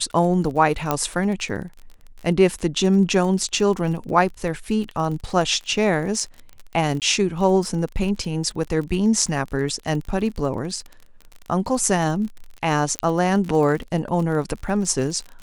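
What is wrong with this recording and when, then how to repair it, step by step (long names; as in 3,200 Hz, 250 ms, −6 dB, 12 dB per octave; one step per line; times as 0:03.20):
surface crackle 35 per second −29 dBFS
0:00.91: click −6 dBFS
0:07.00–0:07.02: drop-out 18 ms
0:12.99: click −6 dBFS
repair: click removal
repair the gap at 0:07.00, 18 ms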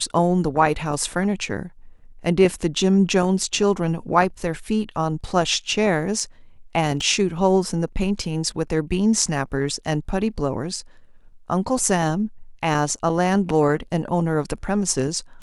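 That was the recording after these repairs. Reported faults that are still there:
0:00.91: click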